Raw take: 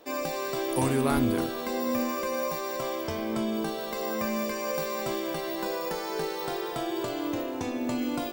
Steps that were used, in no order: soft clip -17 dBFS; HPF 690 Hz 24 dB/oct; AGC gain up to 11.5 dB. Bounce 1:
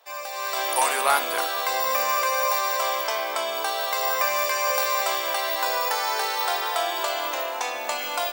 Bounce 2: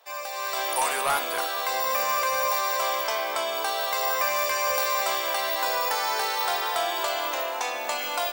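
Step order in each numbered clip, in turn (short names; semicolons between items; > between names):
HPF > soft clip > AGC; AGC > HPF > soft clip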